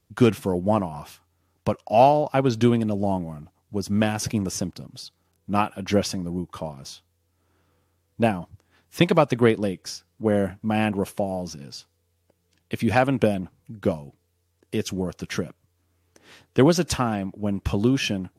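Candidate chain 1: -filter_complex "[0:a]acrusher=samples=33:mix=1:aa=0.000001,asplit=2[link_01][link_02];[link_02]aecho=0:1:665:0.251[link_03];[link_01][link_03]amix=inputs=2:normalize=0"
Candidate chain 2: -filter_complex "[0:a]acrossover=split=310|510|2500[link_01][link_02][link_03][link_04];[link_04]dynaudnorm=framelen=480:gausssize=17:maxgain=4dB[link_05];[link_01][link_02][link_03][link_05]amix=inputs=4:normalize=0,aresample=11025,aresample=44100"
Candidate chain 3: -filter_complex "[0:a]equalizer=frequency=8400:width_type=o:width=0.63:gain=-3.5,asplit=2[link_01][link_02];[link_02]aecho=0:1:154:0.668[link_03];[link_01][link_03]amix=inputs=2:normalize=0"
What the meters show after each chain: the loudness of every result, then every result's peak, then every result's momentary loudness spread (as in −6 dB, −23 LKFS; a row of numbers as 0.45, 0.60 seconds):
−23.5, −24.0, −22.5 LKFS; −5.0, −3.0, −3.0 dBFS; 18, 17, 15 LU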